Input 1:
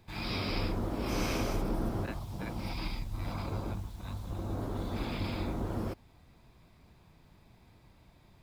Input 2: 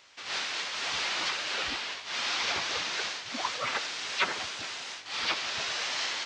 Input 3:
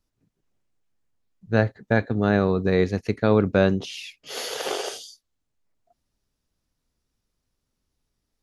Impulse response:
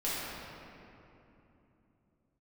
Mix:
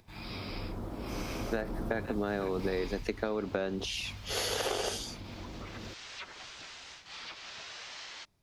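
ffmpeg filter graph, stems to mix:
-filter_complex "[0:a]dynaudnorm=framelen=590:gausssize=7:maxgain=9.5dB,alimiter=limit=-19.5dB:level=0:latency=1:release=188,volume=-6.5dB,afade=type=out:start_time=2.86:duration=0.28:silence=0.354813[link_01];[1:a]acompressor=threshold=-33dB:ratio=5,adelay=2000,volume=-9dB[link_02];[2:a]highpass=frequency=230:width=0.5412,highpass=frequency=230:width=1.3066,acompressor=threshold=-24dB:ratio=4,volume=0dB,asplit=2[link_03][link_04];[link_04]apad=whole_len=364014[link_05];[link_02][link_05]sidechaincompress=threshold=-41dB:ratio=3:attack=5:release=957[link_06];[link_01][link_03]amix=inputs=2:normalize=0,acompressor=threshold=-28dB:ratio=6,volume=0dB[link_07];[link_06][link_07]amix=inputs=2:normalize=0,acompressor=mode=upward:threshold=-58dB:ratio=2.5"

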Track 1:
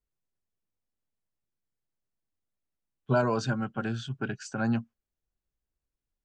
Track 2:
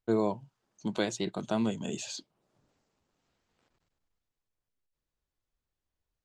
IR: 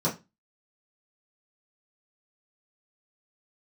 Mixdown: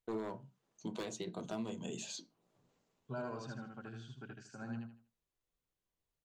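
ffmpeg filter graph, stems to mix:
-filter_complex "[0:a]volume=-18dB,asplit=2[link_01][link_02];[link_02]volume=-3dB[link_03];[1:a]highshelf=frequency=2100:gain=2.5,aeval=exprs='0.0891*(abs(mod(val(0)/0.0891+3,4)-2)-1)':channel_layout=same,volume=-4dB,asplit=2[link_04][link_05];[link_05]volume=-17.5dB[link_06];[2:a]atrim=start_sample=2205[link_07];[link_06][link_07]afir=irnorm=-1:irlink=0[link_08];[link_03]aecho=0:1:78|156|234|312:1|0.29|0.0841|0.0244[link_09];[link_01][link_04][link_08][link_09]amix=inputs=4:normalize=0,alimiter=level_in=7dB:limit=-24dB:level=0:latency=1:release=467,volume=-7dB"

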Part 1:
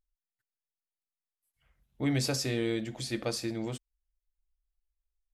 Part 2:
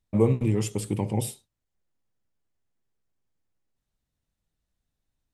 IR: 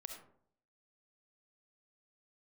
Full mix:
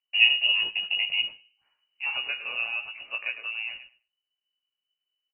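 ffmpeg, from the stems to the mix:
-filter_complex "[0:a]equalizer=frequency=760:width=0.36:gain=10.5,volume=-4.5dB,asplit=2[link_01][link_02];[link_02]volume=-11.5dB[link_03];[1:a]agate=range=-10dB:threshold=-40dB:ratio=16:detection=peak,volume=2.5dB,asplit=3[link_04][link_05][link_06];[link_05]volume=-15.5dB[link_07];[link_06]volume=-23.5dB[link_08];[2:a]atrim=start_sample=2205[link_09];[link_07][link_09]afir=irnorm=-1:irlink=0[link_10];[link_03][link_08]amix=inputs=2:normalize=0,aecho=0:1:105|210|315:1|0.16|0.0256[link_11];[link_01][link_04][link_10][link_11]amix=inputs=4:normalize=0,flanger=delay=15.5:depth=2.6:speed=1.8,lowpass=frequency=2600:width_type=q:width=0.5098,lowpass=frequency=2600:width_type=q:width=0.6013,lowpass=frequency=2600:width_type=q:width=0.9,lowpass=frequency=2600:width_type=q:width=2.563,afreqshift=-3000"

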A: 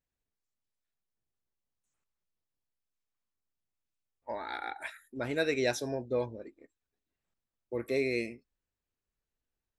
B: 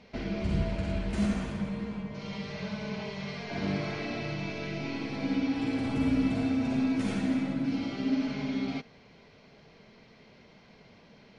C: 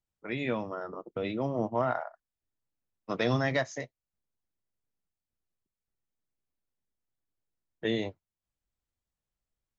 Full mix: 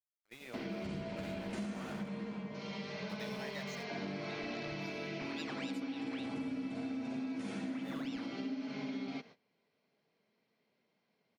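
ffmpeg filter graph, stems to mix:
ffmpeg -i stem1.wav -i stem2.wav -i stem3.wav -filter_complex "[0:a]aeval=exprs='val(0)*sin(2*PI*2000*n/s+2000*0.65/3.7*sin(2*PI*3.7*n/s))':channel_layout=same,volume=-11.5dB[link_01];[1:a]highpass=230,adelay=400,volume=-2.5dB[link_02];[2:a]aemphasis=mode=production:type=riaa,aeval=exprs='val(0)*gte(abs(val(0)),0.0168)':channel_layout=same,volume=-17.5dB[link_03];[link_01][link_02][link_03]amix=inputs=3:normalize=0,agate=range=-20dB:threshold=-53dB:ratio=16:detection=peak,lowshelf=frequency=200:gain=4.5,acompressor=threshold=-37dB:ratio=6" out.wav

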